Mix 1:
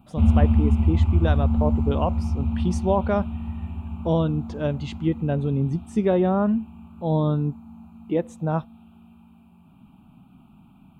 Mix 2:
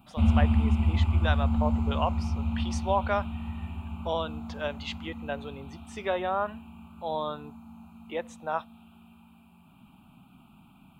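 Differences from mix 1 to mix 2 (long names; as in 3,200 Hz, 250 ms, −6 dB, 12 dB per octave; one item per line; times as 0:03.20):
speech: add three-way crossover with the lows and the highs turned down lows −22 dB, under 510 Hz, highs −12 dB, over 5,700 Hz
master: add tilt shelving filter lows −5 dB, about 860 Hz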